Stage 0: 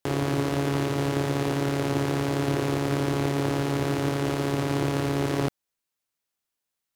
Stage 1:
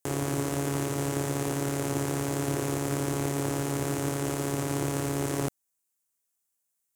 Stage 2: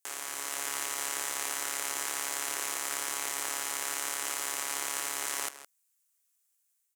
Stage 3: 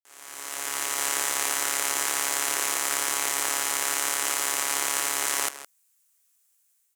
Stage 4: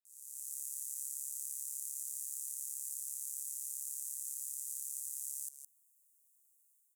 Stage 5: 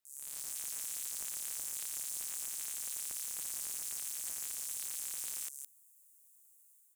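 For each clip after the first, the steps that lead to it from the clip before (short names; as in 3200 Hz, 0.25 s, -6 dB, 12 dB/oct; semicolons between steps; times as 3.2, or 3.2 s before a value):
resonant high shelf 5700 Hz +9.5 dB, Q 1.5; gain -4 dB
HPF 1400 Hz 12 dB/oct; AGC gain up to 4.5 dB; outdoor echo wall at 28 m, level -13 dB
opening faded in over 1.08 s; gain +7.5 dB
inverse Chebyshev high-pass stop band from 1800 Hz, stop band 70 dB; compressor 5:1, threshold -33 dBFS, peak gain reduction 9 dB; gain -3 dB
wavefolder -36 dBFS; gain +7 dB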